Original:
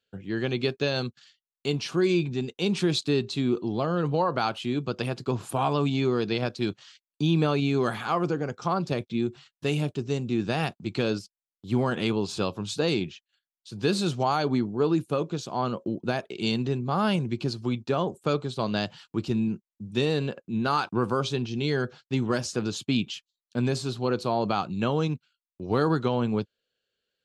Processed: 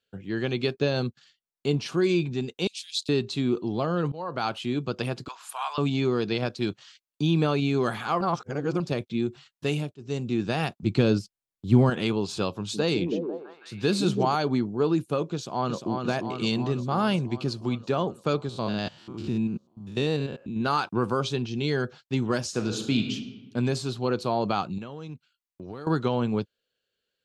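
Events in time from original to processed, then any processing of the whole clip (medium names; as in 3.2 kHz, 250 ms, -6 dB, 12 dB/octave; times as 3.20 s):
0.74–1.86 s: tilt shelf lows +3.5 dB
2.67–3.09 s: inverse Chebyshev high-pass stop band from 930 Hz, stop band 60 dB
4.12–4.52 s: fade in, from -21 dB
5.28–5.78 s: high-pass 960 Hz 24 dB/octave
8.21–8.80 s: reverse
9.66–10.27 s: dip -20 dB, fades 0.30 s equal-power
10.83–11.90 s: bass shelf 320 Hz +10 dB
12.55–14.35 s: repeats whose band climbs or falls 164 ms, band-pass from 250 Hz, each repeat 0.7 oct, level -1 dB
15.34–15.97 s: echo throw 350 ms, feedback 70%, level -5 dB
18.49–20.61 s: spectrogram pixelated in time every 100 ms
22.48–23.13 s: reverb throw, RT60 1.2 s, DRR 4.5 dB
24.78–25.87 s: compression, threshold -35 dBFS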